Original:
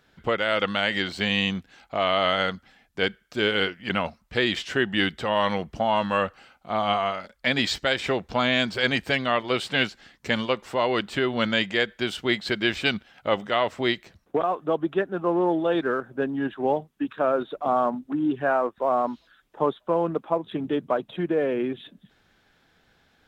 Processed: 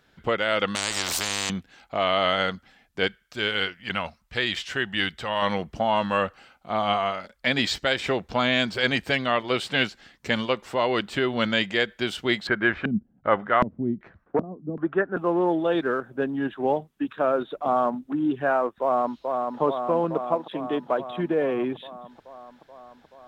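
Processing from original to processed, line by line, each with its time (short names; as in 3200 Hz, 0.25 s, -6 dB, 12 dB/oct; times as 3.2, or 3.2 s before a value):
0.75–1.5 spectral compressor 10:1
3.07–5.42 bell 310 Hz -7.5 dB 2.4 oct
12.47–15.17 LFO low-pass square 1.3 Hz 220–1500 Hz
18.81–19.61 echo throw 0.43 s, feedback 75%, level -4 dB
20.35–20.99 HPF 430 Hz -> 160 Hz 6 dB/oct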